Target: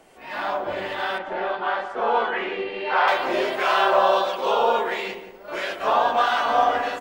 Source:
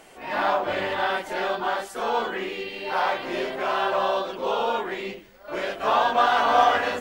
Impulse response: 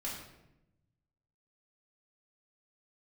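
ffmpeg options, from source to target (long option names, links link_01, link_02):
-filter_complex "[0:a]asettb=1/sr,asplit=3[link_01][link_02][link_03];[link_01]atrim=end=1.184[link_04];[link_02]atrim=start=1.18:end=3.08,asetpts=PTS-STARTPTS,afade=type=in:duration=0.004:curve=qsin,afade=type=out:start_time=1.896:duration=0.004:curve=qsin,lowpass=2600[link_05];[link_03]atrim=start=3.076[link_06];[link_04][link_05]acrossfade=duration=0.004:curve1=hsin:curve2=qsin[link_07];[link_07][link_06]acrossfade=duration=0.004:curve1=qsin:curve2=hsin,acrossover=split=390[link_08][link_09];[link_09]dynaudnorm=framelen=490:gausssize=7:maxgain=11.5dB[link_10];[link_08][link_10]amix=inputs=2:normalize=0,acrossover=split=1100[link_11][link_12];[link_11]aeval=exprs='val(0)*(1-0.5/2+0.5/2*cos(2*PI*1.5*n/s))':channel_layout=same[link_13];[link_12]aeval=exprs='val(0)*(1-0.5/2-0.5/2*cos(2*PI*1.5*n/s))':channel_layout=same[link_14];[link_13][link_14]amix=inputs=2:normalize=0,asplit=2[link_15][link_16];[link_16]adelay=177,lowpass=frequency=1100:poles=1,volume=-8.5dB,asplit=2[link_17][link_18];[link_18]adelay=177,lowpass=frequency=1100:poles=1,volume=0.43,asplit=2[link_19][link_20];[link_20]adelay=177,lowpass=frequency=1100:poles=1,volume=0.43,asplit=2[link_21][link_22];[link_22]adelay=177,lowpass=frequency=1100:poles=1,volume=0.43,asplit=2[link_23][link_24];[link_24]adelay=177,lowpass=frequency=1100:poles=1,volume=0.43[link_25];[link_17][link_19][link_21][link_23][link_25]amix=inputs=5:normalize=0[link_26];[link_15][link_26]amix=inputs=2:normalize=0,volume=-1.5dB"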